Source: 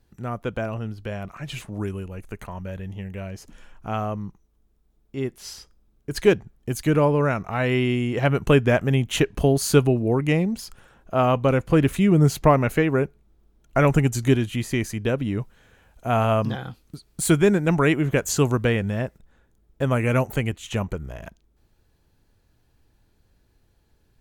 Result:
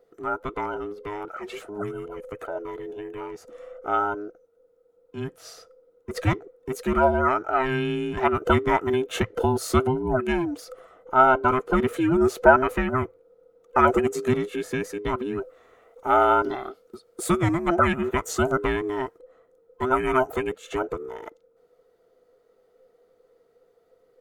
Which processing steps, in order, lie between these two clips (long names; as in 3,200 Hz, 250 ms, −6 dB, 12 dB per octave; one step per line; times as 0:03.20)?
frequency inversion band by band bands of 500 Hz
hollow resonant body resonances 650/1,300 Hz, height 18 dB, ringing for 20 ms
level −7 dB